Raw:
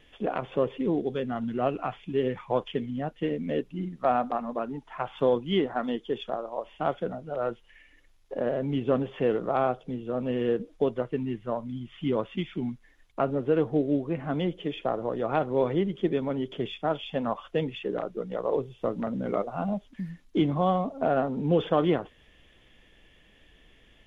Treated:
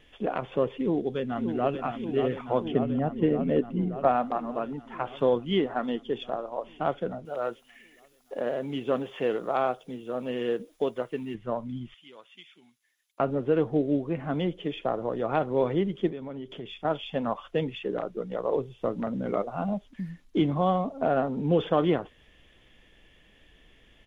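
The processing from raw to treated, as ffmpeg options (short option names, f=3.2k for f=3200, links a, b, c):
-filter_complex "[0:a]asplit=2[a][b];[b]afade=t=in:st=0.71:d=0.01,afade=t=out:st=1.83:d=0.01,aecho=0:1:580|1160|1740|2320|2900|3480|4060|4640|5220|5800|6380|6960:0.421697|0.316272|0.237204|0.177903|0.133427|0.100071|0.0750529|0.0562897|0.0422173|0.0316629|0.0237472|0.0178104[c];[a][c]amix=inputs=2:normalize=0,asettb=1/sr,asplit=3[d][e][f];[d]atrim=end=2.654[g];[e]atrim=start=2.65:end=4.08,asetpts=PTS-STARTPTS,afade=t=in:d=0.004:c=qsin,afade=t=out:st=1.426:d=0.004:c=qsin,tiltshelf=f=1.4k:g=5[h];[f]atrim=start=4.076[i];[g][h]acrossfade=d=0.004:c1=hsin:c2=qsin[j];[j][i]acrossfade=d=0.004:c1=qsin:c2=hsin,asettb=1/sr,asplit=3[k][l][m];[k]atrim=end=7.254[n];[l]atrim=start=7.25:end=11.35,asetpts=PTS-STARTPTS,afade=t=in:d=0.004:c=qsin,afade=t=out:st=4.096:d=0.004:c=qsin,aemphasis=mode=production:type=bsi[o];[m]atrim=start=11.346[p];[n][o]acrossfade=d=0.004:c1=hsin:c2=qsin[q];[q][p]acrossfade=d=0.004:c1=qsin:c2=hsin,asettb=1/sr,asplit=3[r][s][t];[r]atrim=end=11.944[u];[s]atrim=start=11.94:end=13.2,asetpts=PTS-STARTPTS,afade=t=in:d=0.004:c=qsin,afade=t=out:st=1.256:d=0.004:c=qsin,aderivative[v];[t]atrim=start=13.196[w];[u][v]acrossfade=d=0.004:c1=hsin:c2=qsin[x];[x][w]acrossfade=d=0.004:c1=qsin:c2=hsin,asettb=1/sr,asplit=3[y][z][aa];[y]atrim=end=16.104[ab];[z]atrim=start=16.1:end=16.85,asetpts=PTS-STARTPTS,afade=t=in:d=0.004:c=qsin,afade=t=out:st=0.746:d=0.004:c=qsin,acompressor=threshold=-38dB:ratio=2.5:attack=3.2:release=140:knee=1:detection=peak[ac];[aa]atrim=start=16.846[ad];[ab][ac]acrossfade=d=0.004:c1=hsin:c2=qsin[ae];[ae][ad]acrossfade=d=0.004:c1=qsin:c2=hsin"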